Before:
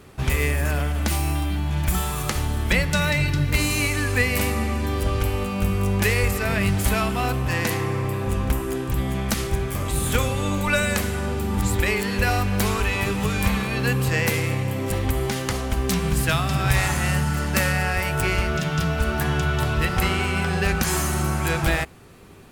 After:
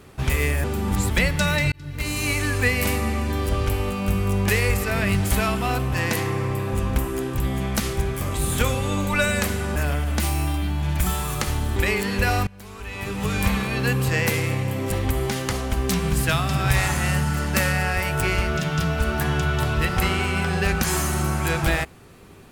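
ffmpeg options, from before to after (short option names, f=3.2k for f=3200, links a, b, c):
-filter_complex "[0:a]asplit=7[a][b][c][d][e][f][g];[a]atrim=end=0.642[h];[b]atrim=start=11.298:end=11.762[i];[c]atrim=start=2.638:end=3.26,asetpts=PTS-STARTPTS,afade=t=out:st=0.618:d=0.004:c=hsin[j];[d]atrim=start=3.26:end=11.302,asetpts=PTS-STARTPTS,afade=t=in:d=0.65[k];[e]atrim=start=0.638:end=2.642[l];[f]atrim=start=11.758:end=12.47,asetpts=PTS-STARTPTS,afade=t=out:st=0.708:d=0.004:c=hsin:silence=0.0707946[m];[g]atrim=start=12.47,asetpts=PTS-STARTPTS,afade=t=in:d=0.87:c=qua:silence=0.0707946[n];[h][i]acrossfade=d=0.004:c1=hsin:c2=hsin[o];[j][k]concat=n=2:v=0:a=1[p];[o][p]acrossfade=d=0.004:c1=hsin:c2=hsin[q];[q][l]acrossfade=d=0.004:c1=hsin:c2=hsin[r];[m][n]concat=n=2:v=0:a=1[s];[r][s]acrossfade=d=0.004:c1=hsin:c2=hsin"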